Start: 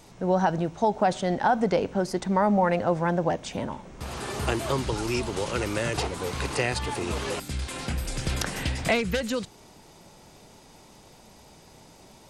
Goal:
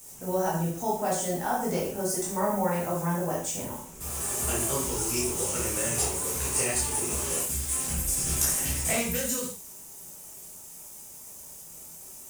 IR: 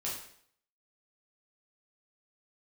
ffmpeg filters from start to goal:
-filter_complex "[0:a]acrusher=bits=7:mix=0:aa=0.5,aexciter=amount=11.6:drive=3.2:freq=6300[link_01];[1:a]atrim=start_sample=2205,afade=type=out:start_time=0.22:duration=0.01,atrim=end_sample=10143[link_02];[link_01][link_02]afir=irnorm=-1:irlink=0,volume=-7dB"

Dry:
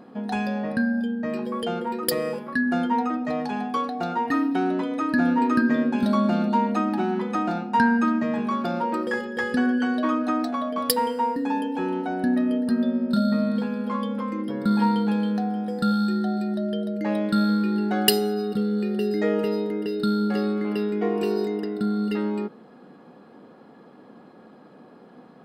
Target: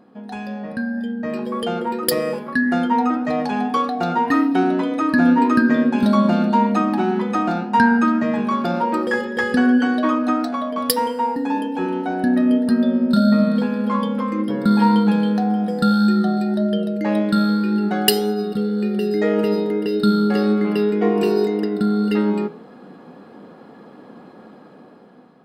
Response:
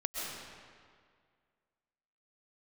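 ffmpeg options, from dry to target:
-af "flanger=delay=9.3:depth=2.8:regen=87:speed=1.8:shape=sinusoidal,dynaudnorm=framelen=310:gausssize=7:maxgain=11dB"

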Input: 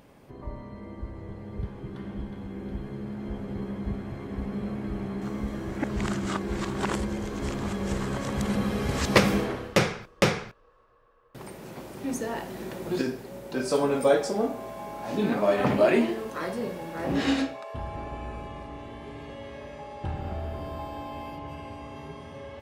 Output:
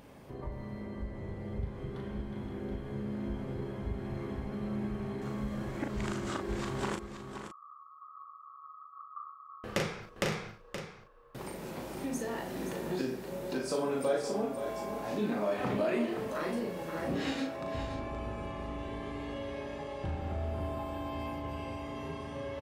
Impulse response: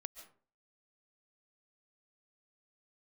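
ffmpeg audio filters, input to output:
-filter_complex "[0:a]acompressor=threshold=-38dB:ratio=2,asettb=1/sr,asplit=3[link_01][link_02][link_03];[link_01]atrim=end=6.954[link_04];[link_02]atrim=start=6.95:end=9.64,asetpts=PTS-STARTPTS,afade=type=in:duration=0.004:curve=qsin,afade=type=out:start_time=2.686:duration=0.004:curve=qsin,asuperpass=centerf=1200:order=12:qfactor=5.5[link_05];[link_03]atrim=start=9.636[link_06];[link_04][link_05]acrossfade=duration=0.004:curve1=hsin:curve2=qsin[link_07];[link_07][link_06]acrossfade=duration=0.004:curve1=qsin:curve2=hsin,asplit=2[link_08][link_09];[link_09]adelay=38,volume=-5dB[link_10];[link_08][link_10]amix=inputs=2:normalize=0,aecho=1:1:523:0.355"

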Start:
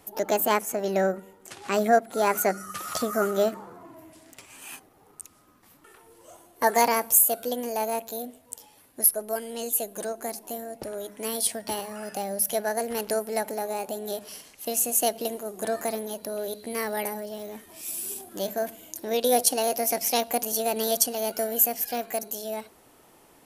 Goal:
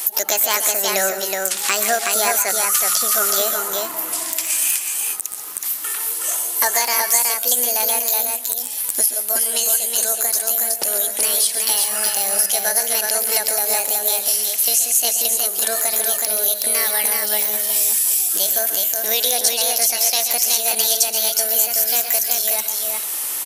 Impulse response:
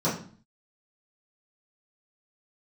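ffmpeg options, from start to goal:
-filter_complex "[0:a]acrossover=split=7200[link_01][link_02];[link_02]acompressor=threshold=-40dB:ratio=4:attack=1:release=60[link_03];[link_01][link_03]amix=inputs=2:normalize=0,aderivative,acompressor=threshold=-52dB:ratio=5,aeval=exprs='clip(val(0),-1,0.0168)':channel_layout=same,aecho=1:1:123|139|371:0.188|0.266|0.668,alimiter=level_in=35dB:limit=-1dB:release=50:level=0:latency=1,volume=-1dB"

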